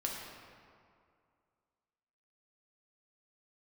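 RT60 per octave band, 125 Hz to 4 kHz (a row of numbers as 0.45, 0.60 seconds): 2.3, 2.3, 2.3, 2.3, 1.8, 1.3 seconds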